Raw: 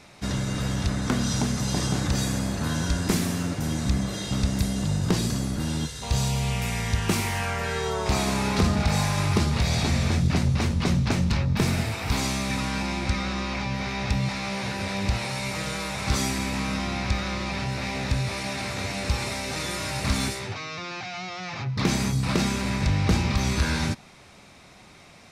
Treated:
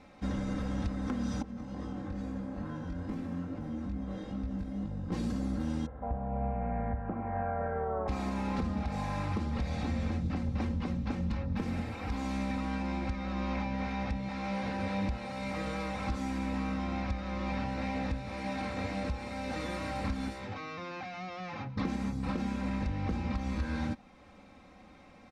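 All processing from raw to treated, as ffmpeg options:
ffmpeg -i in.wav -filter_complex "[0:a]asettb=1/sr,asplit=3[link_01][link_02][link_03];[link_01]atrim=end=1.424[link_04];[link_02]atrim=start=1.42:end=5.12,asetpts=PTS-STARTPTS,afade=type=in:duration=0.004:curve=qsin,afade=type=out:start_time=3.696:duration=0.004:curve=qsin,equalizer=frequency=12000:width_type=o:width=2.8:gain=-11,acompressor=threshold=-27dB:ratio=6:attack=3.2:release=140:knee=1:detection=peak,flanger=delay=18.5:depth=4:speed=2.3[link_05];[link_03]atrim=start=5.116[link_06];[link_04][link_05]acrossfade=duration=0.004:curve1=hsin:curve2=qsin[link_07];[link_07][link_06]acrossfade=duration=0.004:curve1=qsin:curve2=hsin,asettb=1/sr,asplit=3[link_08][link_09][link_10];[link_08]atrim=end=5.864[link_11];[link_09]atrim=start=5.86:end=8.08,asetpts=PTS-STARTPTS,afade=type=in:duration=0.004:curve=qsin,afade=type=out:start_time=2.216:duration=0.004:curve=qsin,lowpass=frequency=1500:width=0.5412,lowpass=frequency=1500:width=1.3066,equalizer=frequency=670:width_type=o:width=0.45:gain=12[link_12];[link_10]atrim=start=8.076[link_13];[link_11][link_12]acrossfade=duration=0.004:curve1=hsin:curve2=qsin[link_14];[link_14][link_13]acrossfade=duration=0.004:curve1=qsin:curve2=hsin,lowpass=frequency=1000:poles=1,aecho=1:1:3.8:0.69,alimiter=limit=-20.5dB:level=0:latency=1:release=400,volume=-3.5dB" out.wav

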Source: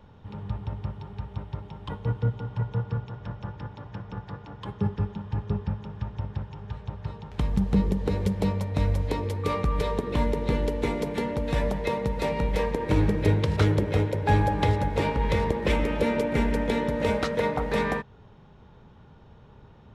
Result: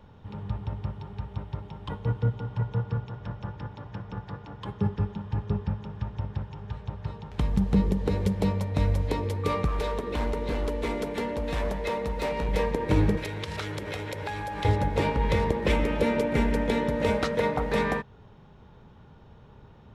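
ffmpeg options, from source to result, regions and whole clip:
ffmpeg -i in.wav -filter_complex "[0:a]asettb=1/sr,asplit=3[link_01][link_02][link_03];[link_01]atrim=end=9.674[link_04];[link_02]atrim=start=9.67:end=12.48,asetpts=PTS-STARTPTS,afade=type=in:duration=0.004:curve=qsin,afade=type=out:start_time=2.806:duration=0.004:curve=qsin,equalizer=frequency=130:width_type=o:width=0.92:gain=-9.5,asoftclip=type=hard:threshold=-24dB[link_05];[link_03]atrim=start=12.476[link_06];[link_04][link_05]acrossfade=duration=0.004:curve1=hsin:curve2=qsin[link_07];[link_07][link_06]acrossfade=duration=0.004:curve1=qsin:curve2=hsin,asettb=1/sr,asplit=3[link_08][link_09][link_10];[link_08]atrim=end=13.174[link_11];[link_09]atrim=start=13.17:end=14.65,asetpts=PTS-STARTPTS,afade=type=in:duration=0.004:curve=qsin,afade=type=out:start_time=1.476:duration=0.004:curve=qsin,tiltshelf=frequency=670:gain=-7.5,acompressor=threshold=-29dB:ratio=12:attack=3.2:release=140:knee=1:detection=peak[link_12];[link_10]atrim=start=14.646[link_13];[link_11][link_12]acrossfade=duration=0.004:curve1=hsin:curve2=qsin[link_14];[link_14][link_13]acrossfade=duration=0.004:curve1=qsin:curve2=hsin" out.wav

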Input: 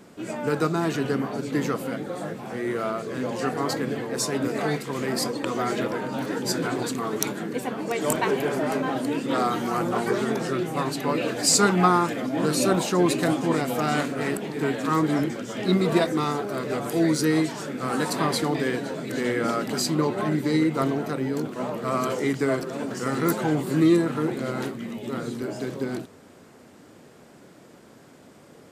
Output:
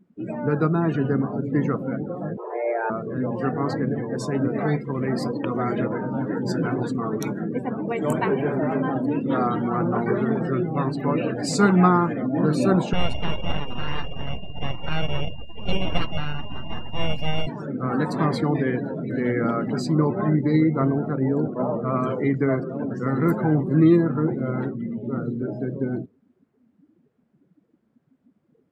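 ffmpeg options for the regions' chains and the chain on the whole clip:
ffmpeg -i in.wav -filter_complex "[0:a]asettb=1/sr,asplit=3[link_01][link_02][link_03];[link_01]atrim=end=2.374[link_04];[link_02]atrim=start=2.37:end=2.9,asetpts=PTS-STARTPTS,afade=type=in:duration=0.004:curve=qsin,afade=type=out:start_time=0.526:duration=0.004:curve=qsin,lowshelf=frequency=460:gain=4.5,afreqshift=230[link_05];[link_03]atrim=start=2.896[link_06];[link_04][link_05]acrossfade=duration=0.004:curve1=hsin:curve2=qsin[link_07];[link_07][link_06]acrossfade=duration=0.004:curve1=qsin:curve2=hsin,asettb=1/sr,asplit=3[link_08][link_09][link_10];[link_08]atrim=end=12.934[link_11];[link_09]atrim=start=12.93:end=17.47,asetpts=PTS-STARTPTS,afade=type=in:duration=0.004:curve=qsin,afade=type=out:start_time=4.536:duration=0.004:curve=qsin,asuperstop=centerf=2100:order=20:qfactor=3.9,aeval=exprs='val(0)*sin(2*PI*1400*n/s)':channel_layout=same,aeval=exprs='abs(val(0))':channel_layout=same[link_12];[link_10]atrim=start=17.466[link_13];[link_11][link_12]acrossfade=duration=0.004:curve1=hsin:curve2=qsin[link_14];[link_14][link_13]acrossfade=duration=0.004:curve1=qsin:curve2=hsin,asettb=1/sr,asplit=3[link_15][link_16][link_17];[link_15]atrim=end=21.224[link_18];[link_16]atrim=start=21.22:end=21.82,asetpts=PTS-STARTPTS,afade=type=in:duration=0.004:curve=qsin,afade=type=out:start_time=0.596:duration=0.004:curve=qsin,lowpass=9600,equalizer=frequency=620:width=1:gain=5.5[link_19];[link_17]atrim=start=21.816[link_20];[link_18][link_19]acrossfade=duration=0.004:curve1=hsin:curve2=qsin[link_21];[link_21][link_20]acrossfade=duration=0.004:curve1=qsin:curve2=hsin,afftdn=noise_reduction=25:noise_floor=-34,bass=frequency=250:gain=8,treble=frequency=4000:gain=-13" out.wav

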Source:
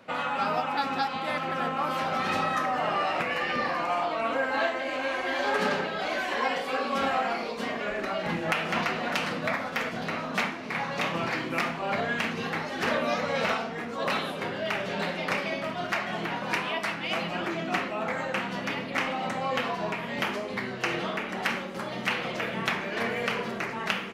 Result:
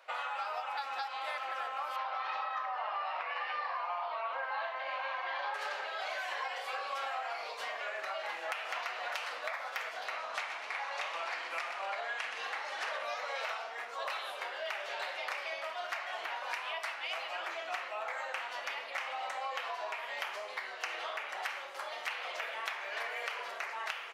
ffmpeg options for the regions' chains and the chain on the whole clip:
ffmpeg -i in.wav -filter_complex "[0:a]asettb=1/sr,asplit=3[link_01][link_02][link_03];[link_01]atrim=end=1.964[link_04];[link_02]atrim=start=1.96:end=5.54,asetpts=PTS-STARTPTS,afade=type=in:duration=0.004:curve=qsin,afade=type=out:start_time=3.576:duration=0.004:curve=qsin,lowpass=frequency=4600:width=0.5412,lowpass=frequency=4600:width=1.3066,equalizer=frequency=1000:width_type=o:width=0.58:gain=8[link_05];[link_03]atrim=start=5.536[link_06];[link_04][link_05]acrossfade=duration=0.004:curve1=hsin:curve2=qsin[link_07];[link_07][link_06]acrossfade=duration=0.004:curve1=qsin:curve2=hsin,asettb=1/sr,asplit=3[link_08][link_09][link_10];[link_08]atrim=end=10.174[link_11];[link_09]atrim=start=10.17:end=13.05,asetpts=PTS-STARTPTS,afade=type=in:duration=0.004:curve=qsin,afade=type=out:start_time=2.876:duration=0.004:curve=qsin,lowpass=frequency=11000:width=0.5412,lowpass=frequency=11000:width=1.3066,asoftclip=type=hard:threshold=-15dB,asplit=6[link_12][link_13][link_14][link_15][link_16][link_17];[link_13]adelay=123,afreqshift=40,volume=-10dB[link_18];[link_14]adelay=246,afreqshift=80,volume=-17.1dB[link_19];[link_15]adelay=369,afreqshift=120,volume=-24.3dB[link_20];[link_16]adelay=492,afreqshift=160,volume=-31.4dB[link_21];[link_17]adelay=615,afreqshift=200,volume=-38.5dB[link_22];[link_12][link_18][link_19][link_20][link_21][link_22]amix=inputs=6:normalize=0,atrim=end_sample=127008[link_23];[link_10]atrim=start=13.046[link_24];[link_11][link_23]acrossfade=duration=0.004:curve1=hsin:curve2=qsin[link_25];[link_25][link_24]acrossfade=duration=0.004:curve1=qsin:curve2=hsin,highpass=frequency=630:width=0.5412,highpass=frequency=630:width=1.3066,acompressor=threshold=-31dB:ratio=5,volume=-3.5dB" out.wav

